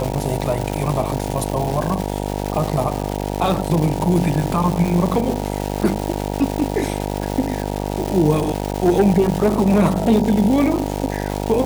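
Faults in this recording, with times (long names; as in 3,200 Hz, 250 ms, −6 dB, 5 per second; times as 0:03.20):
mains buzz 50 Hz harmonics 19 −24 dBFS
surface crackle 510 per second −22 dBFS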